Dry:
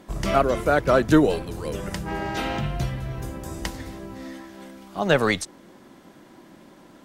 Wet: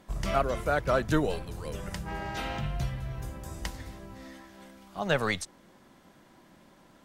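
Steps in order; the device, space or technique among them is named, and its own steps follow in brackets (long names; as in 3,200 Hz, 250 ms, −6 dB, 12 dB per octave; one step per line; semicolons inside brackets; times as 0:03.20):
low shelf boost with a cut just above (low-shelf EQ 65 Hz +5.5 dB; parametric band 320 Hz −6 dB 1.1 octaves)
level −6 dB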